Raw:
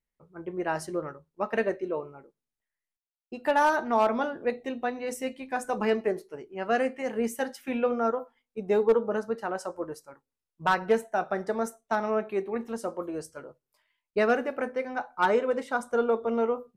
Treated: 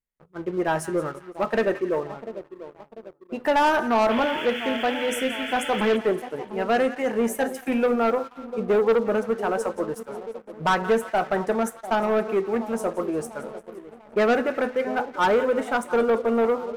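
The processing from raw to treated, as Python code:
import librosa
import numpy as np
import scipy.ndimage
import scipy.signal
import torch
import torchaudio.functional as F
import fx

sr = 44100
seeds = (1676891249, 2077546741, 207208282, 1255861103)

y = fx.peak_eq(x, sr, hz=4600.0, db=-12.5, octaves=0.6)
y = fx.spec_paint(y, sr, seeds[0], shape='noise', start_s=4.1, length_s=1.87, low_hz=1300.0, high_hz=3500.0, level_db=-41.0)
y = fx.echo_split(y, sr, split_hz=1000.0, low_ms=695, high_ms=174, feedback_pct=52, wet_db=-15.5)
y = fx.leveller(y, sr, passes=2)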